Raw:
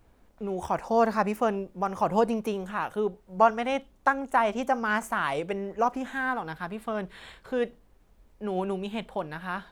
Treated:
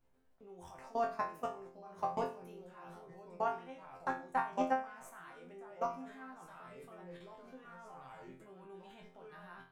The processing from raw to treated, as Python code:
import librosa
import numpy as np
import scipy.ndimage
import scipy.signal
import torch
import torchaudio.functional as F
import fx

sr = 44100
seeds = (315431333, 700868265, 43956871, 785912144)

y = fx.echo_pitch(x, sr, ms=737, semitones=-2, count=2, db_per_echo=-6.0)
y = fx.level_steps(y, sr, step_db=22)
y = fx.resonator_bank(y, sr, root=41, chord='fifth', decay_s=0.38)
y = y * 10.0 ** (4.0 / 20.0)